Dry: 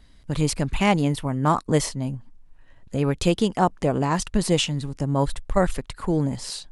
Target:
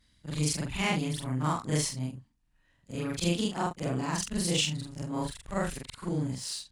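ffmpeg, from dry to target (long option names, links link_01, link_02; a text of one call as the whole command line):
ffmpeg -i in.wav -filter_complex "[0:a]afftfilt=real='re':imag='-im':win_size=4096:overlap=0.75,highpass=frequency=130:poles=1,equalizer=frequency=590:width_type=o:width=2.8:gain=-10.5,asplit=2[link_01][link_02];[link_02]aeval=exprs='sgn(val(0))*max(abs(val(0))-0.00631,0)':channel_layout=same,volume=-6dB[link_03];[link_01][link_03]amix=inputs=2:normalize=0" out.wav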